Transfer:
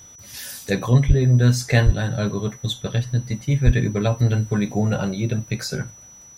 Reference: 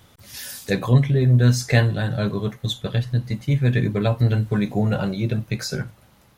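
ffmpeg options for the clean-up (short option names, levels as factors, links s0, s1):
-filter_complex "[0:a]bandreject=f=5900:w=30,asplit=3[s0][s1][s2];[s0]afade=t=out:st=1.07:d=0.02[s3];[s1]highpass=f=140:w=0.5412,highpass=f=140:w=1.3066,afade=t=in:st=1.07:d=0.02,afade=t=out:st=1.19:d=0.02[s4];[s2]afade=t=in:st=1.19:d=0.02[s5];[s3][s4][s5]amix=inputs=3:normalize=0,asplit=3[s6][s7][s8];[s6]afade=t=out:st=1.85:d=0.02[s9];[s7]highpass=f=140:w=0.5412,highpass=f=140:w=1.3066,afade=t=in:st=1.85:d=0.02,afade=t=out:st=1.97:d=0.02[s10];[s8]afade=t=in:st=1.97:d=0.02[s11];[s9][s10][s11]amix=inputs=3:normalize=0,asplit=3[s12][s13][s14];[s12]afade=t=out:st=3.65:d=0.02[s15];[s13]highpass=f=140:w=0.5412,highpass=f=140:w=1.3066,afade=t=in:st=3.65:d=0.02,afade=t=out:st=3.77:d=0.02[s16];[s14]afade=t=in:st=3.77:d=0.02[s17];[s15][s16][s17]amix=inputs=3:normalize=0"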